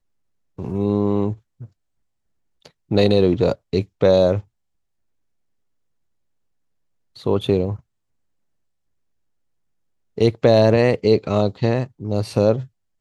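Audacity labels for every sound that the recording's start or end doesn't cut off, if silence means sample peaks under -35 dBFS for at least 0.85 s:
2.650000	4.400000	sound
7.170000	7.760000	sound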